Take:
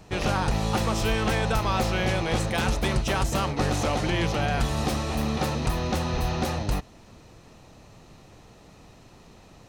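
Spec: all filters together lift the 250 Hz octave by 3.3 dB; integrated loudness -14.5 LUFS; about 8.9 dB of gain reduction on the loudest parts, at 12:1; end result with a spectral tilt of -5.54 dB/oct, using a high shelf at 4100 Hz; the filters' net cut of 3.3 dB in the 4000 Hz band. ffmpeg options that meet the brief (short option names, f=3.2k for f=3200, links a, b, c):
-af "equalizer=f=250:t=o:g=4.5,equalizer=f=4k:t=o:g=-7,highshelf=f=4.1k:g=4.5,acompressor=threshold=-28dB:ratio=12,volume=18.5dB"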